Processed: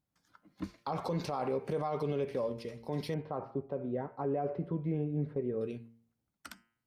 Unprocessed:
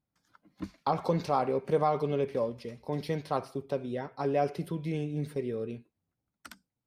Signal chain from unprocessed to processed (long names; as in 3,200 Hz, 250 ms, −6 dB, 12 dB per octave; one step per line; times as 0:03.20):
0:03.14–0:05.61: low-pass filter 1,200 Hz 12 dB per octave
hum removal 115.1 Hz, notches 27
brickwall limiter −25 dBFS, peak gain reduction 10 dB